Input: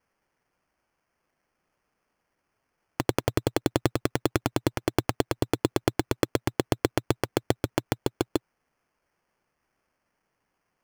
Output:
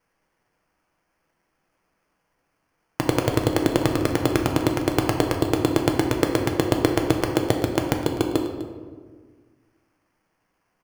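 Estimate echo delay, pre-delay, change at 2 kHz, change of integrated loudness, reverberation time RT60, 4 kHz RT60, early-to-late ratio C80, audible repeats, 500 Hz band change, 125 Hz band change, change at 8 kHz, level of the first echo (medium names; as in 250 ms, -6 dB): 251 ms, 6 ms, +5.0 dB, +6.0 dB, 1.6 s, 0.85 s, 7.0 dB, 1, +5.5 dB, +5.5 dB, +4.0 dB, -17.0 dB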